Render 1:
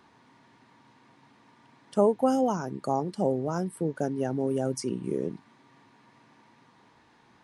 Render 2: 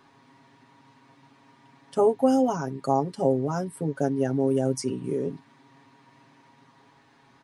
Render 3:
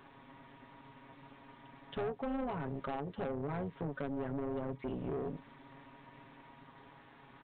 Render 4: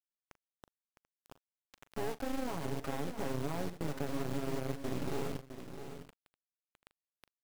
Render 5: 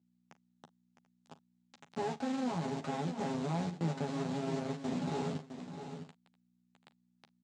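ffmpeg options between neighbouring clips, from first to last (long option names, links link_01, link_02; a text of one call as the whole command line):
ffmpeg -i in.wav -af "aecho=1:1:7.3:0.75" out.wav
ffmpeg -i in.wav -af "acompressor=threshold=-31dB:ratio=4,aresample=8000,asoftclip=type=tanh:threshold=-33.5dB,aresample=44100,tremolo=f=290:d=0.667,volume=3.5dB" out.wav
ffmpeg -i in.wav -filter_complex "[0:a]adynamicsmooth=sensitivity=1.5:basefreq=870,acrusher=bits=5:dc=4:mix=0:aa=0.000001,asplit=2[link_01][link_02];[link_02]aecho=0:1:40|659|737:0.15|0.335|0.119[link_03];[link_01][link_03]amix=inputs=2:normalize=0,volume=5dB" out.wav
ffmpeg -i in.wav -filter_complex "[0:a]aeval=exprs='val(0)+0.000282*(sin(2*PI*60*n/s)+sin(2*PI*2*60*n/s)/2+sin(2*PI*3*60*n/s)/3+sin(2*PI*4*60*n/s)/4+sin(2*PI*5*60*n/s)/5)':channel_layout=same,highpass=frequency=110:width=0.5412,highpass=frequency=110:width=1.3066,equalizer=frequency=160:width_type=q:width=4:gain=6,equalizer=frequency=220:width_type=q:width=4:gain=9,equalizer=frequency=810:width_type=q:width=4:gain=7,equalizer=frequency=3900:width_type=q:width=4:gain=4,equalizer=frequency=7300:width_type=q:width=4:gain=4,lowpass=frequency=7500:width=0.5412,lowpass=frequency=7500:width=1.3066,asplit=2[link_01][link_02];[link_02]adelay=12,volume=-4dB[link_03];[link_01][link_03]amix=inputs=2:normalize=0,volume=-2.5dB" out.wav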